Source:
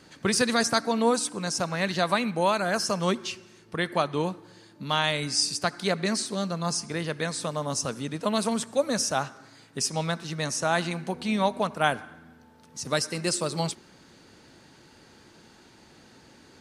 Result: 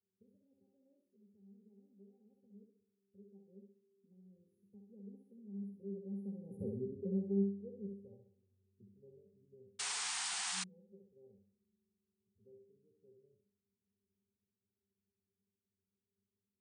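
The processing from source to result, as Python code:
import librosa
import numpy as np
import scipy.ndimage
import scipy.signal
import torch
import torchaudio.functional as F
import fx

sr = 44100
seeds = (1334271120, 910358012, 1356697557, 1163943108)

y = fx.doppler_pass(x, sr, speed_mps=55, closest_m=7.7, pass_at_s=6.66)
y = scipy.signal.sosfilt(scipy.signal.cheby1(5, 1.0, [550.0, 9900.0], 'bandstop', fs=sr, output='sos'), y)
y = fx.hum_notches(y, sr, base_hz=50, count=2)
y = fx.octave_resonator(y, sr, note='G', decay_s=0.23)
y = fx.echo_thinned(y, sr, ms=66, feedback_pct=43, hz=290.0, wet_db=-3)
y = fx.spec_paint(y, sr, seeds[0], shape='noise', start_s=9.79, length_s=0.85, low_hz=690.0, high_hz=9600.0, level_db=-49.0)
y = y * 10.0 ** (9.5 / 20.0)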